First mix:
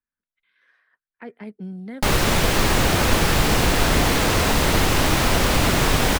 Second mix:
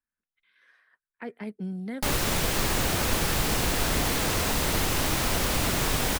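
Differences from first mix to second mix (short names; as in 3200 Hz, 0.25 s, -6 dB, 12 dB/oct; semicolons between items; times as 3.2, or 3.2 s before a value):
background -8.5 dB; master: add high shelf 6000 Hz +8 dB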